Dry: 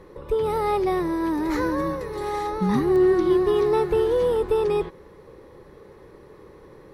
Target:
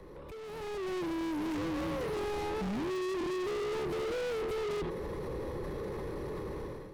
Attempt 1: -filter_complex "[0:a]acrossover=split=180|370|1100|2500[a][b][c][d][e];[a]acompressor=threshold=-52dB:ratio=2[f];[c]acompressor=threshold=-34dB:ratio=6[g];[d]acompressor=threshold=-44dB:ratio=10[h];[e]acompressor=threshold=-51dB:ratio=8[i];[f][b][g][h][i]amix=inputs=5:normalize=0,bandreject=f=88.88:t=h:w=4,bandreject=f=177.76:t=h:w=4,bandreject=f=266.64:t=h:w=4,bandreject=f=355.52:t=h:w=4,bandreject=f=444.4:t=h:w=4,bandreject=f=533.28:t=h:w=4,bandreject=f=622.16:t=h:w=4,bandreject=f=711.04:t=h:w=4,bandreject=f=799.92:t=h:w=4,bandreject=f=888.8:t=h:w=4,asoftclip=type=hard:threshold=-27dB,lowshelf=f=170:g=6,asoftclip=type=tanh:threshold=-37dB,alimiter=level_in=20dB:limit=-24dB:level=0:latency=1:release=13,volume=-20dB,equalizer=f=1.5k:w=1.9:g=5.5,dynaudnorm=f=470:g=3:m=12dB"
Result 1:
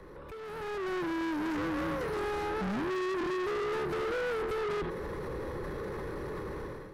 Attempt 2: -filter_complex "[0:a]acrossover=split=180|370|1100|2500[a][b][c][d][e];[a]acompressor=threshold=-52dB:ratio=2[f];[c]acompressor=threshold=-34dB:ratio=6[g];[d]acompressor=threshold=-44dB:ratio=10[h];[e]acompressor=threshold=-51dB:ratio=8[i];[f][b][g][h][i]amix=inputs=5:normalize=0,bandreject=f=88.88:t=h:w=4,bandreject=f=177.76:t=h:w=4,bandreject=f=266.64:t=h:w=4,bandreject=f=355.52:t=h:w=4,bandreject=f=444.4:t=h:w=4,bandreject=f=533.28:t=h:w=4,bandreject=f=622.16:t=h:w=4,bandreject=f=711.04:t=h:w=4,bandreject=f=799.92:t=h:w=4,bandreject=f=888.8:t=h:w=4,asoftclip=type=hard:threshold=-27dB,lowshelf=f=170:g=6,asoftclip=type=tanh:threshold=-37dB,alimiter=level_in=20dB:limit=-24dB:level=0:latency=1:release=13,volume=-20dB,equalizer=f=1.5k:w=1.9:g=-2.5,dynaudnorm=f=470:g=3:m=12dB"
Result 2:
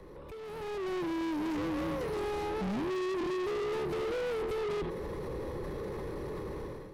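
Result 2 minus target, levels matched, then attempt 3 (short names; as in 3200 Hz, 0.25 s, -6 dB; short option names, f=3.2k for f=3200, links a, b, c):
hard clip: distortion -5 dB
-filter_complex "[0:a]acrossover=split=180|370|1100|2500[a][b][c][d][e];[a]acompressor=threshold=-52dB:ratio=2[f];[c]acompressor=threshold=-34dB:ratio=6[g];[d]acompressor=threshold=-44dB:ratio=10[h];[e]acompressor=threshold=-51dB:ratio=8[i];[f][b][g][h][i]amix=inputs=5:normalize=0,bandreject=f=88.88:t=h:w=4,bandreject=f=177.76:t=h:w=4,bandreject=f=266.64:t=h:w=4,bandreject=f=355.52:t=h:w=4,bandreject=f=444.4:t=h:w=4,bandreject=f=533.28:t=h:w=4,bandreject=f=622.16:t=h:w=4,bandreject=f=711.04:t=h:w=4,bandreject=f=799.92:t=h:w=4,bandreject=f=888.8:t=h:w=4,asoftclip=type=hard:threshold=-37.5dB,lowshelf=f=170:g=6,asoftclip=type=tanh:threshold=-37dB,alimiter=level_in=20dB:limit=-24dB:level=0:latency=1:release=13,volume=-20dB,equalizer=f=1.5k:w=1.9:g=-2.5,dynaudnorm=f=470:g=3:m=12dB"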